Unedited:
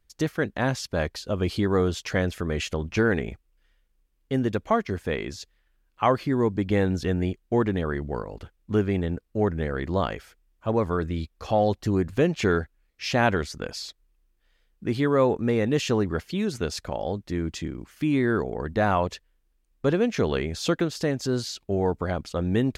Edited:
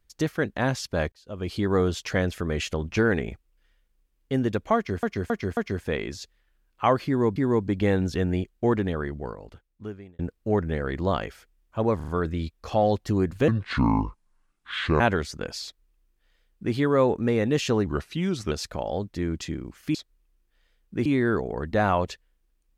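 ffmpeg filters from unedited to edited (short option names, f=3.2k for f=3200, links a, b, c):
-filter_complex "[0:a]asplit=16[a][b][c][d][e][f][g][h][i][j][k][l][m][n][o][p];[a]atrim=end=1.12,asetpts=PTS-STARTPTS,afade=t=out:st=1.116:d=0.004:c=hsin[q];[b]atrim=start=1.12:end=5.032,asetpts=PTS-STARTPTS,afade=t=in:d=0.61[r];[c]atrim=start=4.758:end=5.032[s];[d]atrim=start=4.758:end=5.032[t];[e]atrim=start=4.758:end=6.552[u];[f]atrim=start=6.248:end=9.08,asetpts=PTS-STARTPTS,afade=t=out:st=1.392:d=1.44[v];[g]atrim=start=9.08:end=10.892,asetpts=PTS-STARTPTS,afade=t=in:d=0.004:c=hsin[w];[h]atrim=start=10.848:end=10.892[x];[i]atrim=start=10.848:end=10.892[y];[j]atrim=start=10.848:end=12.254[z];[k]atrim=start=12.25:end=13.21,asetpts=PTS-STARTPTS,asetrate=27783,aresample=44100[aa];[l]atrim=start=13.206:end=16.074[ab];[m]atrim=start=16.07:end=16.65,asetpts=PTS-STARTPTS,asetrate=39249,aresample=44100,atrim=end_sample=28739,asetpts=PTS-STARTPTS[ac];[n]atrim=start=16.646:end=18.082[ad];[o]atrim=start=13.838:end=14.952[ae];[p]atrim=start=18.078[af];[q][r]concat=n=2:v=0:a=1[ag];[ag][s]acrossfade=d=0.004:c1=hsin:c2=hsin[ah];[ah][t]acrossfade=d=0.004:c1=hsin:c2=hsin[ai];[ai][u]acrossfade=d=0.004:c1=hsin:c2=hsin[aj];[v][w]concat=n=2:v=0:a=1[ak];[aj][ak]acrossfade=d=0.004:c1=hsin:c2=hsin[al];[al][x]acrossfade=d=0.004:c1=hsin:c2=hsin[am];[am][y]acrossfade=d=0.004:c1=hsin:c2=hsin[an];[an][z]acrossfade=d=0.004:c1=hsin:c2=hsin[ao];[ao][aa]acrossfade=d=0.004:c1=hsin:c2=hsin[ap];[ap][ab]acrossfade=d=0.004:c1=hsin:c2=hsin[aq];[aq][ac]acrossfade=d=0.004:c1=hsin:c2=hsin[ar];[ar][ad]acrossfade=d=0.004:c1=hsin:c2=hsin[as];[as][ae]acrossfade=d=0.004:c1=hsin:c2=hsin[at];[at][af]acrossfade=d=0.004:c1=hsin:c2=hsin"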